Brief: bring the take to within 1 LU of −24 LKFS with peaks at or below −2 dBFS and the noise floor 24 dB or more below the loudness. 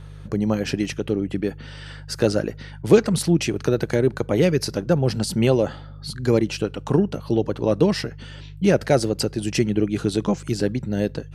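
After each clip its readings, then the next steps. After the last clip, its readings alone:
mains hum 50 Hz; hum harmonics up to 150 Hz; level of the hum −37 dBFS; integrated loudness −22.0 LKFS; sample peak −3.0 dBFS; target loudness −24.0 LKFS
→ hum removal 50 Hz, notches 3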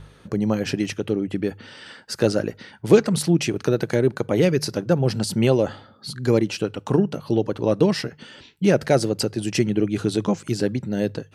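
mains hum none found; integrated loudness −22.0 LKFS; sample peak −2.0 dBFS; target loudness −24.0 LKFS
→ level −2 dB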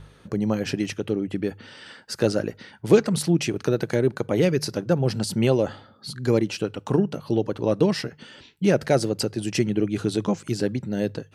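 integrated loudness −24.0 LKFS; sample peak −4.0 dBFS; background noise floor −53 dBFS

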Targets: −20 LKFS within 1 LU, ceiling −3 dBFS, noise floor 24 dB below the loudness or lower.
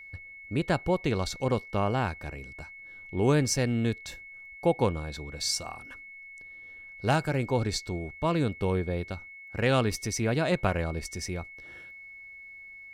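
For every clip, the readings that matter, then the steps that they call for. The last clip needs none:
interfering tone 2,200 Hz; level of the tone −44 dBFS; integrated loudness −29.0 LKFS; sample peak −11.0 dBFS; target loudness −20.0 LKFS
→ notch filter 2,200 Hz, Q 30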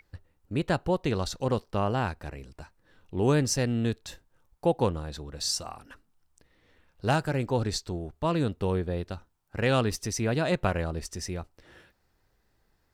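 interfering tone none found; integrated loudness −29.0 LKFS; sample peak −11.0 dBFS; target loudness −20.0 LKFS
→ level +9 dB
brickwall limiter −3 dBFS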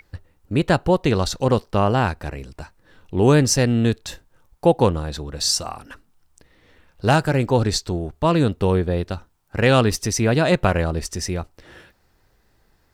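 integrated loudness −20.0 LKFS; sample peak −3.0 dBFS; background noise floor −62 dBFS

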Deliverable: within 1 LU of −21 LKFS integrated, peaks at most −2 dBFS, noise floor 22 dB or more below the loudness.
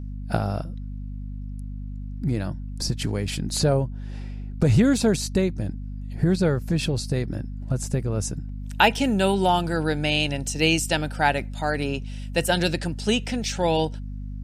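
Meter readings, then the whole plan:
mains hum 50 Hz; hum harmonics up to 250 Hz; level of the hum −30 dBFS; integrated loudness −24.0 LKFS; sample peak −3.0 dBFS; target loudness −21.0 LKFS
→ mains-hum notches 50/100/150/200/250 Hz
level +3 dB
brickwall limiter −2 dBFS

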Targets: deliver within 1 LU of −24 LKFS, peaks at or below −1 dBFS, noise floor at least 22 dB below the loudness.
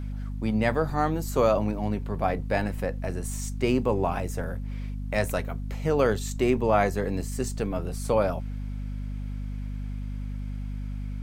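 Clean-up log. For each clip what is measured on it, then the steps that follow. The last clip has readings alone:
mains hum 50 Hz; hum harmonics up to 250 Hz; level of the hum −30 dBFS; integrated loudness −28.5 LKFS; sample peak −8.0 dBFS; target loudness −24.0 LKFS
→ mains-hum notches 50/100/150/200/250 Hz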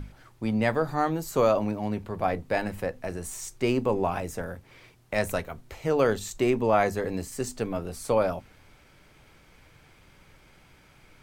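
mains hum none found; integrated loudness −28.0 LKFS; sample peak −9.5 dBFS; target loudness −24.0 LKFS
→ level +4 dB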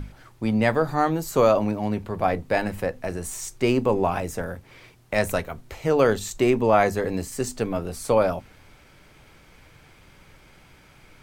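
integrated loudness −24.0 LKFS; sample peak −5.5 dBFS; background noise floor −53 dBFS

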